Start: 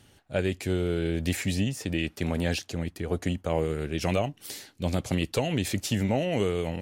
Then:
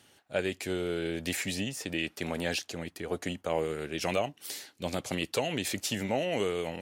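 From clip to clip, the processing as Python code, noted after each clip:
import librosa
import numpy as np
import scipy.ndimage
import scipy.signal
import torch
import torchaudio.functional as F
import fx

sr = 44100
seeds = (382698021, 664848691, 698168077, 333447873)

y = fx.highpass(x, sr, hz=430.0, slope=6)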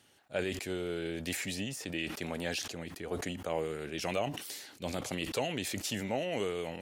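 y = fx.sustainer(x, sr, db_per_s=60.0)
y = y * 10.0 ** (-4.0 / 20.0)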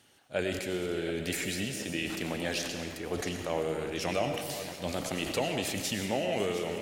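y = fx.reverse_delay_fb(x, sr, ms=366, feedback_pct=56, wet_db=-12.0)
y = fx.rev_freeverb(y, sr, rt60_s=1.3, hf_ratio=0.95, predelay_ms=60, drr_db=6.0)
y = y * 10.0 ** (2.0 / 20.0)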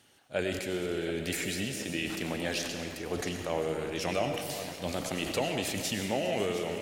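y = x + 10.0 ** (-17.5 / 20.0) * np.pad(x, (int(405 * sr / 1000.0), 0))[:len(x)]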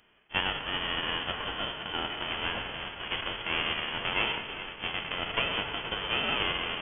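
y = fx.envelope_flatten(x, sr, power=0.3)
y = fx.freq_invert(y, sr, carrier_hz=3300)
y = y * 10.0 ** (3.0 / 20.0)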